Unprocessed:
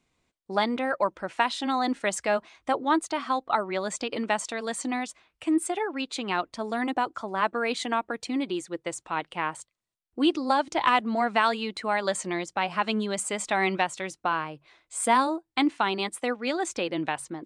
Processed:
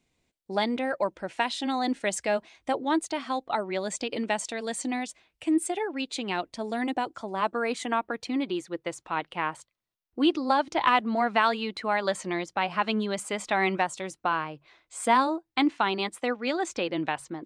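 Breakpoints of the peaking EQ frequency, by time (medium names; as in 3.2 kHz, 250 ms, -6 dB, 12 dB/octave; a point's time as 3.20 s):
peaking EQ -8 dB 0.68 oct
7.28 s 1.2 kHz
8.10 s 8.2 kHz
13.60 s 8.2 kHz
14.01 s 1.5 kHz
14.21 s 9.6 kHz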